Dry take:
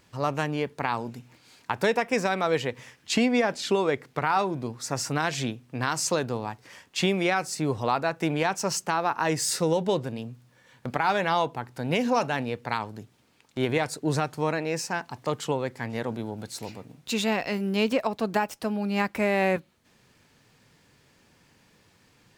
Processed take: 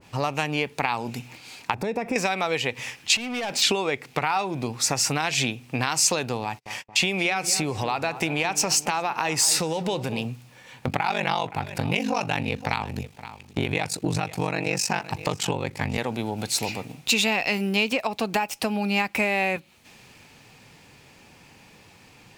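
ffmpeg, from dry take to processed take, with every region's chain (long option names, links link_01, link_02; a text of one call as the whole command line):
ffmpeg -i in.wav -filter_complex "[0:a]asettb=1/sr,asplit=3[link_01][link_02][link_03];[link_01]atrim=end=1.744[link_04];[link_02]atrim=start=1.74:end=2.16,asetpts=PTS-STARTPTS,afade=type=in:duration=0.004:curve=qsin,afade=type=out:start_time=0.416:duration=0.004:curve=qsin,tiltshelf=frequency=790:gain=9.5,bandreject=frequency=3000:width=7.2,acompressor=threshold=-31dB:ratio=3:attack=3.2:release=140:knee=1:detection=peak[link_05];[link_03]atrim=start=2.156[link_06];[link_04][link_05]acrossfade=duration=0.004:curve1=hsin:curve2=qsin[link_07];[link_07][link_06]acrossfade=duration=0.004:curve1=qsin:curve2=hsin,asettb=1/sr,asplit=3[link_08][link_09][link_10];[link_08]atrim=end=3.164[link_11];[link_09]atrim=start=3.16:end=3.62,asetpts=PTS-STARTPTS,afade=type=in:duration=0.004:curve=qsin,afade=type=out:start_time=0.456:duration=0.004:curve=qsin,acompressor=threshold=-31dB:ratio=16:attack=3.2:release=140:knee=1:detection=peak,volume=35.5dB,asoftclip=hard,volume=-35.5dB[link_12];[link_10]atrim=start=3.616[link_13];[link_11][link_12]acrossfade=duration=0.004:curve1=hsin:curve2=qsin[link_14];[link_14][link_13]acrossfade=duration=0.004:curve1=qsin:curve2=hsin,asettb=1/sr,asplit=3[link_15][link_16][link_17];[link_15]atrim=end=6.434[link_18];[link_16]atrim=start=6.43:end=10.25,asetpts=PTS-STARTPTS,afade=type=in:duration=0.004:curve=qsin,afade=type=out:start_time=3.816:duration=0.004:curve=qsin,agate=range=-39dB:threshold=-50dB:ratio=16:release=100:detection=peak,acompressor=threshold=-31dB:ratio=2:attack=3.2:release=140:knee=1:detection=peak,asplit=2[link_19][link_20];[link_20]adelay=226,lowpass=frequency=1400:poles=1,volume=-14.5dB,asplit=2[link_21][link_22];[link_22]adelay=226,lowpass=frequency=1400:poles=1,volume=0.52,asplit=2[link_23][link_24];[link_24]adelay=226,lowpass=frequency=1400:poles=1,volume=0.52,asplit=2[link_25][link_26];[link_26]adelay=226,lowpass=frequency=1400:poles=1,volume=0.52,asplit=2[link_27][link_28];[link_28]adelay=226,lowpass=frequency=1400:poles=1,volume=0.52[link_29];[link_19][link_21][link_23][link_25][link_27][link_29]amix=inputs=6:normalize=0,atrim=end_sample=168462[link_30];[link_17]atrim=start=10.246[link_31];[link_18][link_30]acrossfade=duration=0.004:curve1=hsin:curve2=qsin[link_32];[link_32][link_31]acrossfade=duration=0.004:curve1=qsin:curve2=hsin,asettb=1/sr,asplit=3[link_33][link_34][link_35];[link_33]atrim=end=10.874[link_36];[link_34]atrim=start=10.87:end=15.98,asetpts=PTS-STARTPTS,afade=type=in:duration=0.004:curve=qsin,afade=type=out:start_time=5.106:duration=0.004:curve=qsin,equalizer=frequency=120:width_type=o:width=1.6:gain=7.5,aeval=exprs='val(0)*sin(2*PI*24*n/s)':channel_layout=same,aecho=1:1:520:0.1,atrim=end_sample=225351[link_37];[link_35]atrim=start=15.976[link_38];[link_36][link_37]acrossfade=duration=0.004:curve1=hsin:curve2=qsin[link_39];[link_39][link_38]acrossfade=duration=0.004:curve1=qsin:curve2=hsin,equalizer=frequency=800:width_type=o:width=0.33:gain=6,equalizer=frequency=1600:width_type=o:width=0.33:gain=-3,equalizer=frequency=2500:width_type=o:width=0.33:gain=7,acompressor=threshold=-31dB:ratio=6,adynamicequalizer=threshold=0.00398:dfrequency=1600:dqfactor=0.7:tfrequency=1600:tqfactor=0.7:attack=5:release=100:ratio=0.375:range=3.5:mode=boostabove:tftype=highshelf,volume=8dB" out.wav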